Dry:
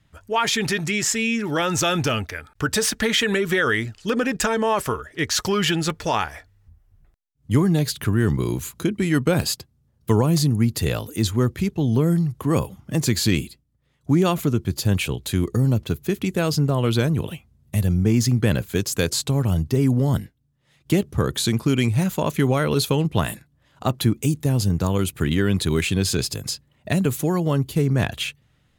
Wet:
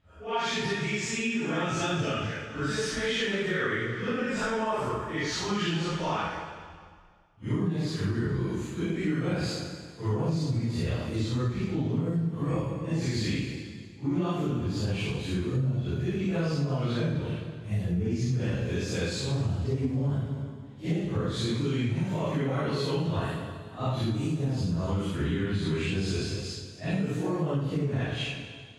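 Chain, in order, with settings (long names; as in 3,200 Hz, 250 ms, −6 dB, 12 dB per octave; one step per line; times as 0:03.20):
random phases in long frames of 200 ms
high-frequency loss of the air 100 metres
dense smooth reverb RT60 1.9 s, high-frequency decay 0.95×, DRR 4.5 dB
downward compressor, threshold −19 dBFS, peak gain reduction 9 dB
level −5.5 dB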